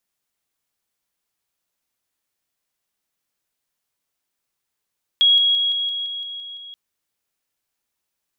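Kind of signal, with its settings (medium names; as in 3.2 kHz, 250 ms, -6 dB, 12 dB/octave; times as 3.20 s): level ladder 3.31 kHz -11 dBFS, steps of -3 dB, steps 9, 0.17 s 0.00 s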